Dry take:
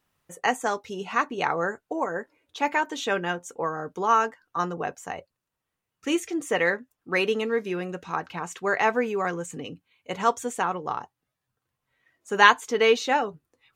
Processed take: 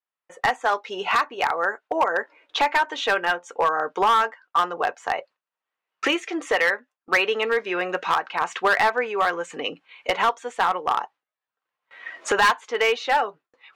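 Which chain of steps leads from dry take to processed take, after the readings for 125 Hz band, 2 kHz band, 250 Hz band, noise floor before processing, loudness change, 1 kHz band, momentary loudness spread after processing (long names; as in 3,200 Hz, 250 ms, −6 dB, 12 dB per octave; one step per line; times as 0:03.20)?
−8.5 dB, +3.5 dB, −3.0 dB, −84 dBFS, +2.5 dB, +4.0 dB, 9 LU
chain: camcorder AGC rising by 18 dB per second
band-pass filter 640–3,100 Hz
noise gate with hold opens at −46 dBFS
hard clipping −15 dBFS, distortion −12 dB
level +2 dB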